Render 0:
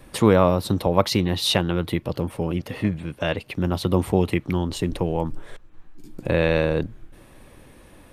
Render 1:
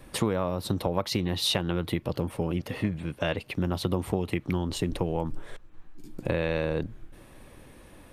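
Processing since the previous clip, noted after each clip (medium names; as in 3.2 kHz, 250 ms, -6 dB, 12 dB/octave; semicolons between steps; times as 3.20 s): compression 10:1, threshold -20 dBFS, peak gain reduction 10.5 dB; trim -2 dB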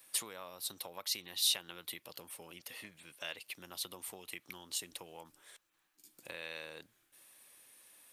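differentiator; trim +1 dB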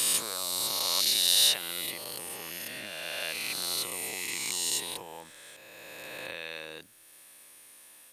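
reverse spectral sustain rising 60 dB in 2.97 s; trim +3.5 dB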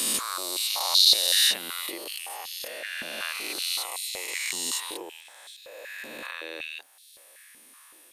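step-sequenced high-pass 5.3 Hz 230–3900 Hz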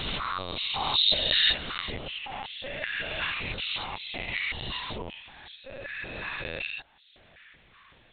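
LPC vocoder at 8 kHz pitch kept; trim +2.5 dB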